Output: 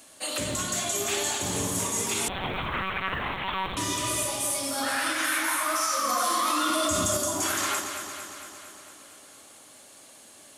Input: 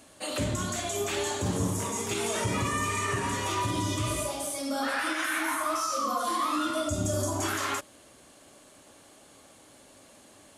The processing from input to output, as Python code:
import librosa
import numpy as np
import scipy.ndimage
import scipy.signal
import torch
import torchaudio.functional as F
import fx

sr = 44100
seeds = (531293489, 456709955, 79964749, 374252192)

y = fx.hum_notches(x, sr, base_hz=50, count=2)
y = fx.echo_alternate(y, sr, ms=114, hz=870.0, feedback_pct=80, wet_db=-5.5)
y = fx.lpc_monotone(y, sr, seeds[0], pitch_hz=190.0, order=8, at=(2.28, 3.77))
y = fx.quant_float(y, sr, bits=6)
y = fx.tilt_eq(y, sr, slope=2.0)
y = fx.env_flatten(y, sr, amount_pct=100, at=(6.09, 7.17))